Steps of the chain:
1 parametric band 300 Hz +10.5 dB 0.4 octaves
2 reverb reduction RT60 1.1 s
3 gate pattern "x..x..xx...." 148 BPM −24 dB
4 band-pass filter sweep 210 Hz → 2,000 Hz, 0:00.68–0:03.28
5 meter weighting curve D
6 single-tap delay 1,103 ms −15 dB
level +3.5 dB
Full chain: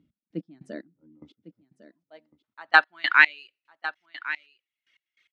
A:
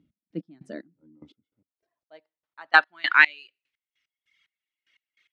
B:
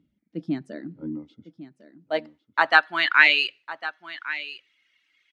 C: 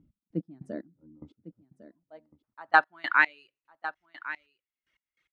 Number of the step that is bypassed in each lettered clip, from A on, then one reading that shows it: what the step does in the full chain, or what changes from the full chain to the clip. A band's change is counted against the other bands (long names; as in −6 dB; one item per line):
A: 6, change in momentary loudness spread −1 LU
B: 3, 2 kHz band −7.0 dB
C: 5, 4 kHz band −11.0 dB